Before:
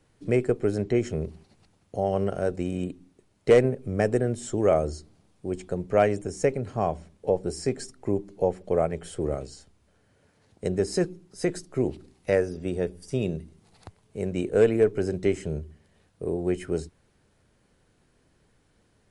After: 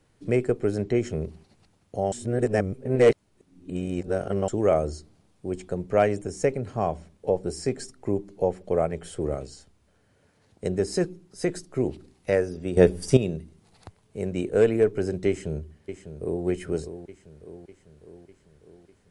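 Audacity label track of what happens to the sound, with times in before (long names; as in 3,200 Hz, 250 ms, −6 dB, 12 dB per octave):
2.120000	4.480000	reverse
12.770000	13.170000	clip gain +11.5 dB
15.280000	16.450000	delay throw 600 ms, feedback 60%, level −10 dB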